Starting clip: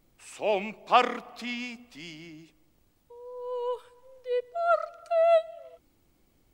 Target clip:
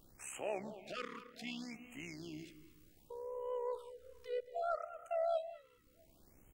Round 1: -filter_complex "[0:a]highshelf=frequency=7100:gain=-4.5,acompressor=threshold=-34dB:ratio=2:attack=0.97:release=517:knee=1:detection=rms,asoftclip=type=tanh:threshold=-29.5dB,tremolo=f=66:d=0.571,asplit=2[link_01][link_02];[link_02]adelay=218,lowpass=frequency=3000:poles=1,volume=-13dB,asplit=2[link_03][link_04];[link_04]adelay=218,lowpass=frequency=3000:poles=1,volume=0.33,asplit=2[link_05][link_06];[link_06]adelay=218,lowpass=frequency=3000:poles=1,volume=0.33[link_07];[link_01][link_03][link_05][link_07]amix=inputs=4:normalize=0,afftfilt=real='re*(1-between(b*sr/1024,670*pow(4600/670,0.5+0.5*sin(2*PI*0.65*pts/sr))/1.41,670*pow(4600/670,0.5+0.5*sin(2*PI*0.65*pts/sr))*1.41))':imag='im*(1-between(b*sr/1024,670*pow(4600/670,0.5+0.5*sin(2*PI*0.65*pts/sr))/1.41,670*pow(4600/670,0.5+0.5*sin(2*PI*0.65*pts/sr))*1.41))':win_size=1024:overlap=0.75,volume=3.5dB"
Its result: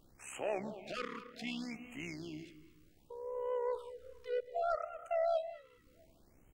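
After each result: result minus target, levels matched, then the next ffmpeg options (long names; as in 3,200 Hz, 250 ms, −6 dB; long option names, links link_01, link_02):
downward compressor: peak gain reduction −4.5 dB; 8,000 Hz band −4.5 dB
-filter_complex "[0:a]highshelf=frequency=7100:gain=-4.5,acompressor=threshold=-43dB:ratio=2:attack=0.97:release=517:knee=1:detection=rms,asoftclip=type=tanh:threshold=-29.5dB,tremolo=f=66:d=0.571,asplit=2[link_01][link_02];[link_02]adelay=218,lowpass=frequency=3000:poles=1,volume=-13dB,asplit=2[link_03][link_04];[link_04]adelay=218,lowpass=frequency=3000:poles=1,volume=0.33,asplit=2[link_05][link_06];[link_06]adelay=218,lowpass=frequency=3000:poles=1,volume=0.33[link_07];[link_01][link_03][link_05][link_07]amix=inputs=4:normalize=0,afftfilt=real='re*(1-between(b*sr/1024,670*pow(4600/670,0.5+0.5*sin(2*PI*0.65*pts/sr))/1.41,670*pow(4600/670,0.5+0.5*sin(2*PI*0.65*pts/sr))*1.41))':imag='im*(1-between(b*sr/1024,670*pow(4600/670,0.5+0.5*sin(2*PI*0.65*pts/sr))/1.41,670*pow(4600/670,0.5+0.5*sin(2*PI*0.65*pts/sr))*1.41))':win_size=1024:overlap=0.75,volume=3.5dB"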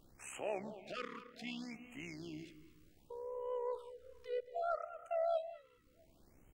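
8,000 Hz band −3.0 dB
-filter_complex "[0:a]highshelf=frequency=7100:gain=4,acompressor=threshold=-43dB:ratio=2:attack=0.97:release=517:knee=1:detection=rms,asoftclip=type=tanh:threshold=-29.5dB,tremolo=f=66:d=0.571,asplit=2[link_01][link_02];[link_02]adelay=218,lowpass=frequency=3000:poles=1,volume=-13dB,asplit=2[link_03][link_04];[link_04]adelay=218,lowpass=frequency=3000:poles=1,volume=0.33,asplit=2[link_05][link_06];[link_06]adelay=218,lowpass=frequency=3000:poles=1,volume=0.33[link_07];[link_01][link_03][link_05][link_07]amix=inputs=4:normalize=0,afftfilt=real='re*(1-between(b*sr/1024,670*pow(4600/670,0.5+0.5*sin(2*PI*0.65*pts/sr))/1.41,670*pow(4600/670,0.5+0.5*sin(2*PI*0.65*pts/sr))*1.41))':imag='im*(1-between(b*sr/1024,670*pow(4600/670,0.5+0.5*sin(2*PI*0.65*pts/sr))/1.41,670*pow(4600/670,0.5+0.5*sin(2*PI*0.65*pts/sr))*1.41))':win_size=1024:overlap=0.75,volume=3.5dB"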